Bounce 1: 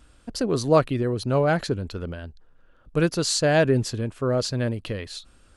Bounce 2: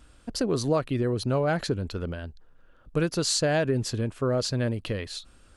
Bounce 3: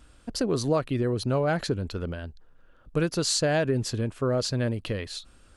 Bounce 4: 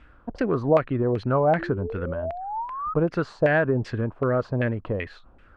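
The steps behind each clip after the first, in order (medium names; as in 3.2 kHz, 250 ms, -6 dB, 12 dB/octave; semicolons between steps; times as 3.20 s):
compression 5:1, threshold -21 dBFS, peak gain reduction 9 dB
no audible change
painted sound rise, 1.58–2.94 s, 320–1300 Hz -37 dBFS; LFO low-pass saw down 2.6 Hz 690–2300 Hz; trim +1.5 dB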